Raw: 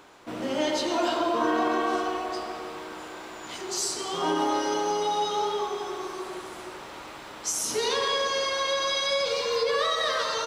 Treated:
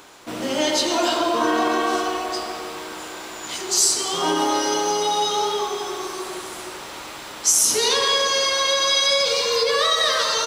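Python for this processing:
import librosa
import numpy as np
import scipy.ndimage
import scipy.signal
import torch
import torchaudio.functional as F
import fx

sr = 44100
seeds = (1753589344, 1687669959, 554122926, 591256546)

y = fx.high_shelf(x, sr, hz=3600.0, db=10.5)
y = y * librosa.db_to_amplitude(4.0)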